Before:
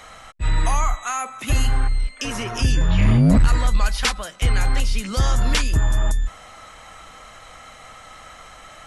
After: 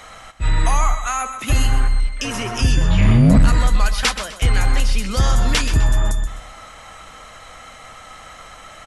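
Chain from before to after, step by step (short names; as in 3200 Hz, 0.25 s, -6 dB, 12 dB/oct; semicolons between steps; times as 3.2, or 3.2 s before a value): feedback echo 0.127 s, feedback 34%, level -11 dB; gain +2.5 dB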